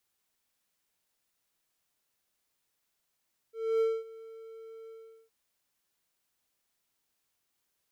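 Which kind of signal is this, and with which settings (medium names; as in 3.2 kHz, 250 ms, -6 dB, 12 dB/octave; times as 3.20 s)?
ADSR triangle 449 Hz, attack 277 ms, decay 228 ms, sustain -21.5 dB, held 1.36 s, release 407 ms -21 dBFS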